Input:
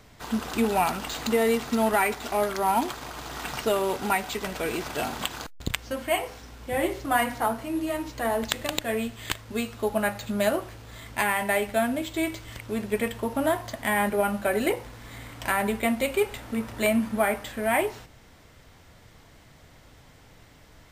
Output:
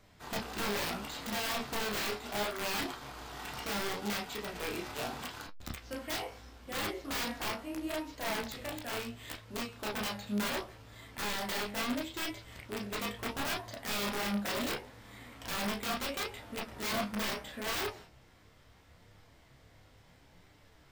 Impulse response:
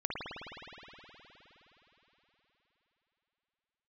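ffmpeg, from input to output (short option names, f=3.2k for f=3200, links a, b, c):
-filter_complex "[0:a]aeval=exprs='(mod(11.2*val(0)+1,2)-1)/11.2':c=same[a];[1:a]atrim=start_sample=2205,atrim=end_sample=3087,asetrate=79380,aresample=44100[b];[a][b]afir=irnorm=-1:irlink=0,flanger=delay=10:depth=9.8:regen=49:speed=0.73:shape=sinusoidal"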